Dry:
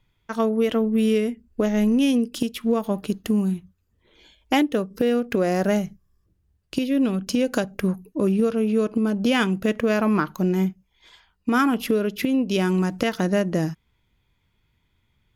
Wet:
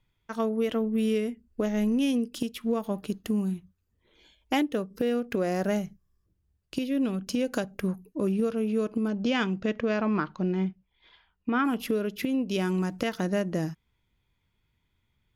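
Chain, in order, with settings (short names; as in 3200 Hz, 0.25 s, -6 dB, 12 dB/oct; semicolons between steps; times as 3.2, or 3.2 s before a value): 9.07–11.64 LPF 7000 Hz -> 3400 Hz 24 dB/oct; gain -6 dB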